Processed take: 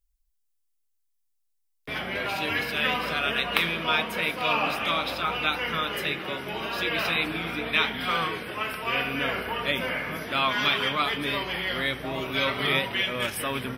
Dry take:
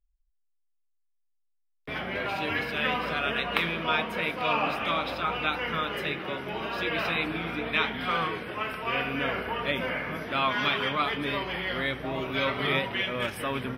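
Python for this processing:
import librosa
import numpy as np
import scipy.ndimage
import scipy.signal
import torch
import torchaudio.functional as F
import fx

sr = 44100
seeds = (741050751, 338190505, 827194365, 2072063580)

y = fx.high_shelf(x, sr, hz=4100.0, db=12.0)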